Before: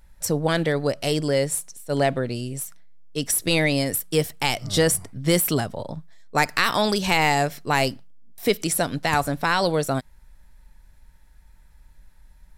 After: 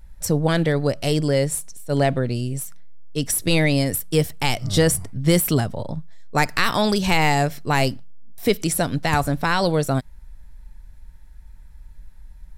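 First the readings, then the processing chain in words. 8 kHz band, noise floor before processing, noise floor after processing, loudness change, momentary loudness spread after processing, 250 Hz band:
0.0 dB, -52 dBFS, -43 dBFS, +1.5 dB, 9 LU, +3.5 dB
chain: low shelf 180 Hz +9.5 dB

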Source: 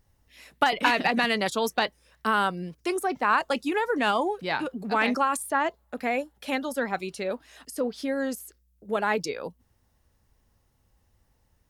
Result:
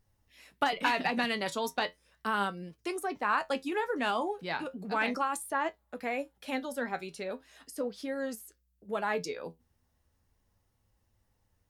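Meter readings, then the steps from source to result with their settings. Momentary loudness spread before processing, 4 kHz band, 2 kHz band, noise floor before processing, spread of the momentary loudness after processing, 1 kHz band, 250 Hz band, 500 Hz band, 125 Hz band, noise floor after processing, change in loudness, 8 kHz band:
10 LU, -6.5 dB, -6.0 dB, -68 dBFS, 10 LU, -6.0 dB, -6.5 dB, -6.0 dB, -6.5 dB, -75 dBFS, -6.0 dB, -6.5 dB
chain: flange 0.36 Hz, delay 9 ms, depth 3.7 ms, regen +61%; gain -2 dB

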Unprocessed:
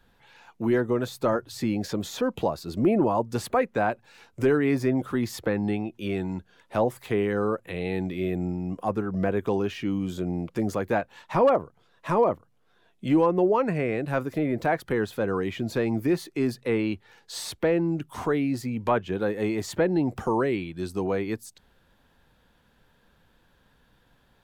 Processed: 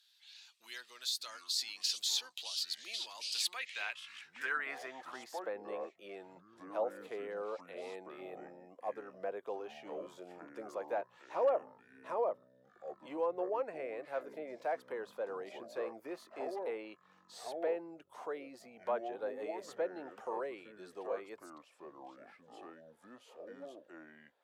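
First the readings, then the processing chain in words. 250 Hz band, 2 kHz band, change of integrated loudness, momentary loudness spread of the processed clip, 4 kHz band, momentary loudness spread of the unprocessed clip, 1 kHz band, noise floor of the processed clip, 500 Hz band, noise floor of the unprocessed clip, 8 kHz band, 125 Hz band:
-25.0 dB, -10.0 dB, -13.0 dB, 19 LU, +1.5 dB, 8 LU, -12.5 dB, -68 dBFS, -13.0 dB, -64 dBFS, -2.0 dB, under -35 dB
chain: echoes that change speed 0.334 s, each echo -6 st, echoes 2, each echo -6 dB; band-pass sweep 4200 Hz -> 560 Hz, 3.33–5.58; differentiator; gain +13 dB

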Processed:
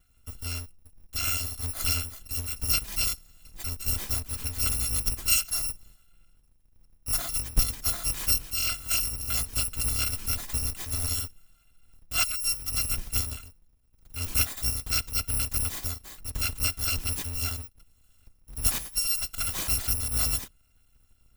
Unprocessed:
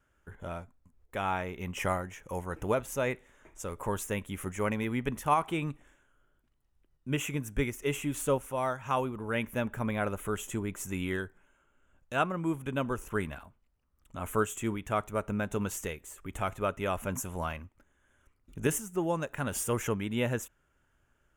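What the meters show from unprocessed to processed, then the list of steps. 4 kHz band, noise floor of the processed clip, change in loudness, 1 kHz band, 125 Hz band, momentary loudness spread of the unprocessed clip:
+14.5 dB, -63 dBFS, +6.0 dB, -9.5 dB, +1.5 dB, 11 LU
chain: FFT order left unsorted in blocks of 256 samples; low shelf 190 Hz +11 dB; gain +2.5 dB

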